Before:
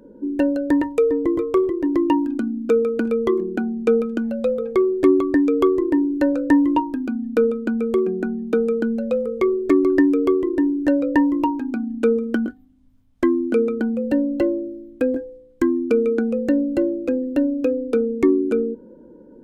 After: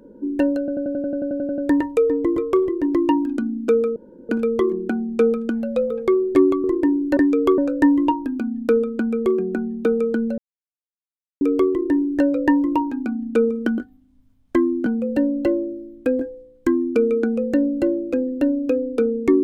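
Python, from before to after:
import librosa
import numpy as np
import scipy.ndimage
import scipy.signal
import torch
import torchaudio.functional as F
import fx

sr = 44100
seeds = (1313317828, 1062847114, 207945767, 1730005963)

y = fx.edit(x, sr, fx.stutter(start_s=0.59, slice_s=0.09, count=12),
    fx.insert_room_tone(at_s=2.97, length_s=0.33),
    fx.move(start_s=5.32, length_s=0.41, to_s=6.26),
    fx.silence(start_s=9.06, length_s=1.03),
    fx.cut(start_s=13.54, length_s=0.27), tone=tone)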